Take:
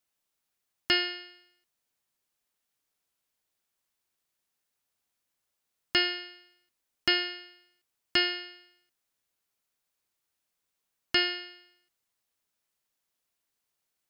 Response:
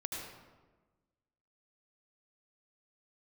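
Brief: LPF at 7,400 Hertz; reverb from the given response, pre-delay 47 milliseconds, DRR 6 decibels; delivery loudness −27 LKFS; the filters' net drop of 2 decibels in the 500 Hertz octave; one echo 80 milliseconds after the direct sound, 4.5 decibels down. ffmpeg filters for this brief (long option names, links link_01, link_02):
-filter_complex "[0:a]lowpass=7400,equalizer=frequency=500:width_type=o:gain=-4,aecho=1:1:80:0.596,asplit=2[link_01][link_02];[1:a]atrim=start_sample=2205,adelay=47[link_03];[link_02][link_03]afir=irnorm=-1:irlink=0,volume=-7dB[link_04];[link_01][link_04]amix=inputs=2:normalize=0,volume=1dB"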